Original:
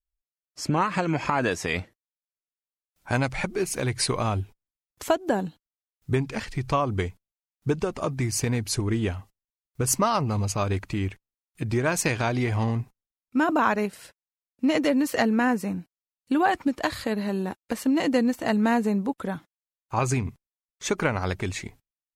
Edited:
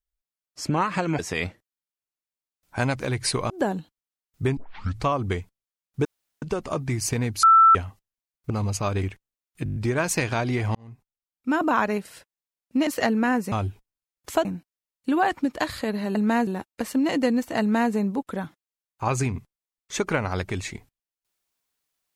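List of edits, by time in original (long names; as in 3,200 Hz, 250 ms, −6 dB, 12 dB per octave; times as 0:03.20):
0:01.19–0:01.52: remove
0:03.33–0:03.75: remove
0:04.25–0:05.18: move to 0:15.68
0:06.25: tape start 0.47 s
0:07.73: splice in room tone 0.37 s
0:08.74–0:09.06: beep over 1,330 Hz −10.5 dBFS
0:09.81–0:10.25: remove
0:10.78–0:11.03: remove
0:11.64: stutter 0.02 s, 7 plays
0:12.63–0:13.50: fade in
0:14.75–0:15.03: remove
0:18.51–0:18.83: duplicate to 0:17.38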